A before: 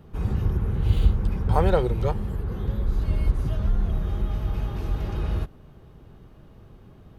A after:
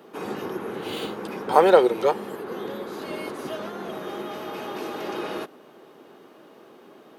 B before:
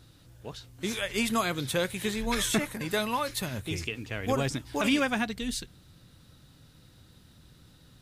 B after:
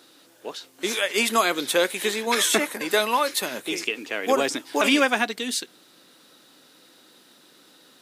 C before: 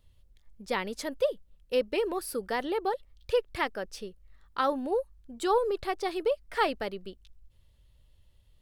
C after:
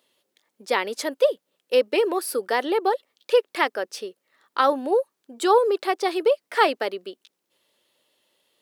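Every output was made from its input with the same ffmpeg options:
-af "highpass=frequency=290:width=0.5412,highpass=frequency=290:width=1.3066,volume=8dB"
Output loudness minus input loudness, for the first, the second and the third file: 0.0, +7.0, +8.0 LU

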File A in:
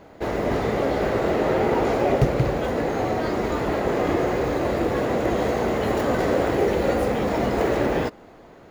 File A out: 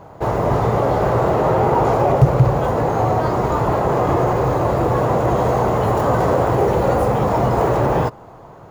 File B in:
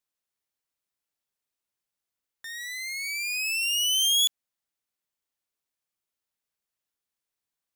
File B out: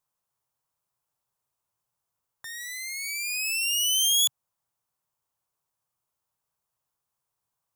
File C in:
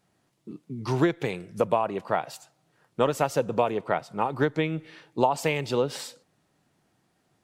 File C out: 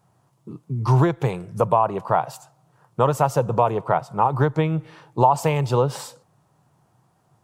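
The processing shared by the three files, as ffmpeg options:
-filter_complex "[0:a]equalizer=frequency=125:width_type=o:width=1:gain=11,equalizer=frequency=250:width_type=o:width=1:gain=-6,equalizer=frequency=1000:width_type=o:width=1:gain=9,equalizer=frequency=2000:width_type=o:width=1:gain=-7,equalizer=frequency=4000:width_type=o:width=1:gain=-5,asplit=2[link_01][link_02];[link_02]alimiter=limit=-12.5dB:level=0:latency=1:release=34,volume=2dB[link_03];[link_01][link_03]amix=inputs=2:normalize=0,volume=-3dB"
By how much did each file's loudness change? +5.5, +0.5, +6.0 LU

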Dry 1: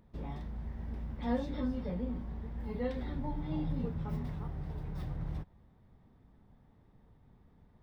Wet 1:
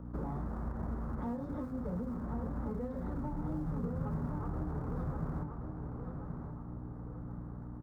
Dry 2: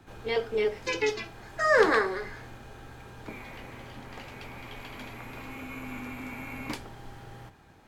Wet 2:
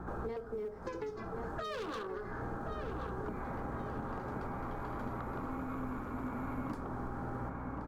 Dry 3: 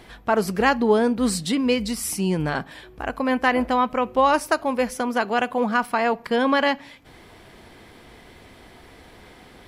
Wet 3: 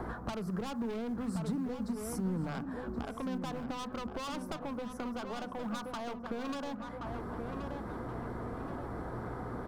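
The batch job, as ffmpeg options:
-filter_complex "[0:a]acrossover=split=370|2600[link_01][link_02][link_03];[link_01]acrusher=bits=3:mode=log:mix=0:aa=0.000001[link_04];[link_04][link_02][link_03]amix=inputs=3:normalize=0,highshelf=frequency=1900:width_type=q:width=3:gain=-13,volume=19dB,asoftclip=hard,volume=-19dB,aeval=exprs='val(0)+0.00316*(sin(2*PI*60*n/s)+sin(2*PI*2*60*n/s)/2+sin(2*PI*3*60*n/s)/3+sin(2*PI*4*60*n/s)/4+sin(2*PI*5*60*n/s)/5)':channel_layout=same,acompressor=threshold=-40dB:ratio=4,asoftclip=type=tanh:threshold=-32.5dB,equalizer=frequency=320:width=0.33:gain=8,asplit=2[link_05][link_06];[link_06]adelay=1076,lowpass=frequency=2900:poles=1,volume=-8dB,asplit=2[link_07][link_08];[link_08]adelay=1076,lowpass=frequency=2900:poles=1,volume=0.48,asplit=2[link_09][link_10];[link_10]adelay=1076,lowpass=frequency=2900:poles=1,volume=0.48,asplit=2[link_11][link_12];[link_12]adelay=1076,lowpass=frequency=2900:poles=1,volume=0.48,asplit=2[link_13][link_14];[link_14]adelay=1076,lowpass=frequency=2900:poles=1,volume=0.48,asplit=2[link_15][link_16];[link_16]adelay=1076,lowpass=frequency=2900:poles=1,volume=0.48[link_17];[link_07][link_09][link_11][link_13][link_15][link_17]amix=inputs=6:normalize=0[link_18];[link_05][link_18]amix=inputs=2:normalize=0,acrossover=split=200|3000[link_19][link_20][link_21];[link_20]acompressor=threshold=-43dB:ratio=6[link_22];[link_19][link_22][link_21]amix=inputs=3:normalize=0,bandreject=frequency=50:width_type=h:width=6,bandreject=frequency=100:width_type=h:width=6,bandreject=frequency=150:width_type=h:width=6,bandreject=frequency=200:width_type=h:width=6,bandreject=frequency=250:width_type=h:width=6,volume=3.5dB"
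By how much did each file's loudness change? −1.0, −11.5, −16.5 LU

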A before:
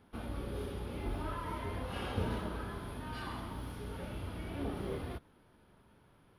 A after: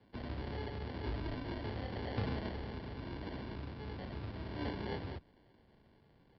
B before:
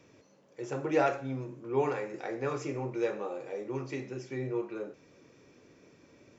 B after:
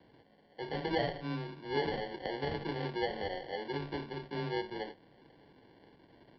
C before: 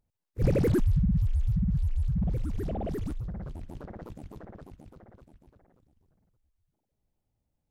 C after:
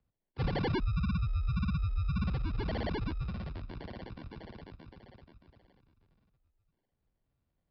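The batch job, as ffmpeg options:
-af "acompressor=threshold=-27dB:ratio=6,acrusher=samples=35:mix=1:aa=0.000001,afreqshift=14,aresample=11025,aresample=44100,volume=-1.5dB"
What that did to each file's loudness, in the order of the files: −1.5, −3.0, −5.5 LU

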